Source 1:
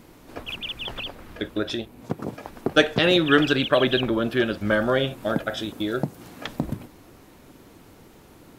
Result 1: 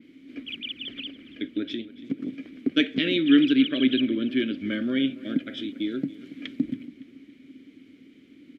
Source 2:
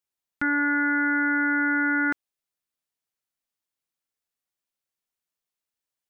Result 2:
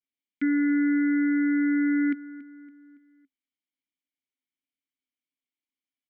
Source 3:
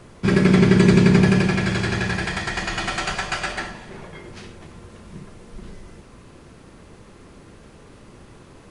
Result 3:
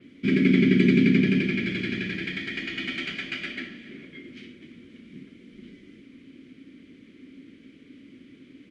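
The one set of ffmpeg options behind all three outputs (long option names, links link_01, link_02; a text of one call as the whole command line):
ffmpeg -i in.wav -filter_complex "[0:a]adynamicequalizer=threshold=0.00562:dfrequency=8300:dqfactor=0.91:tfrequency=8300:tqfactor=0.91:attack=5:release=100:ratio=0.375:range=2:mode=cutabove:tftype=bell,asplit=3[link_01][link_02][link_03];[link_01]bandpass=frequency=270:width_type=q:width=8,volume=0dB[link_04];[link_02]bandpass=frequency=2290:width_type=q:width=8,volume=-6dB[link_05];[link_03]bandpass=frequency=3010:width_type=q:width=8,volume=-9dB[link_06];[link_04][link_05][link_06]amix=inputs=3:normalize=0,asplit=2[link_07][link_08];[link_08]adelay=281,lowpass=frequency=4100:poles=1,volume=-17dB,asplit=2[link_09][link_10];[link_10]adelay=281,lowpass=frequency=4100:poles=1,volume=0.47,asplit=2[link_11][link_12];[link_12]adelay=281,lowpass=frequency=4100:poles=1,volume=0.47,asplit=2[link_13][link_14];[link_14]adelay=281,lowpass=frequency=4100:poles=1,volume=0.47[link_15];[link_07][link_09][link_11][link_13][link_15]amix=inputs=5:normalize=0,volume=8.5dB" out.wav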